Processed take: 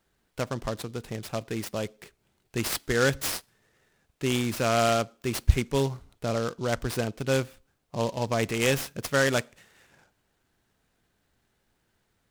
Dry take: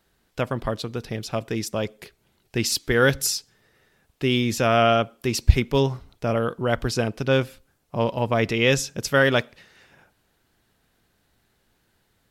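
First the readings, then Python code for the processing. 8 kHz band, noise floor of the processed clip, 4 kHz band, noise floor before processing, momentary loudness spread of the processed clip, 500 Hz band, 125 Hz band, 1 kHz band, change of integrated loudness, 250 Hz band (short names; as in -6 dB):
-4.0 dB, -74 dBFS, -5.5 dB, -68 dBFS, 12 LU, -5.0 dB, -5.0 dB, -5.0 dB, -5.0 dB, -5.0 dB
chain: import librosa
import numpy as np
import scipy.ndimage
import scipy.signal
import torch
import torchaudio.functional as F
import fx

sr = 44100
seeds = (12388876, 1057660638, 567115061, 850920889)

y = fx.noise_mod_delay(x, sr, seeds[0], noise_hz=4200.0, depth_ms=0.039)
y = F.gain(torch.from_numpy(y), -5.0).numpy()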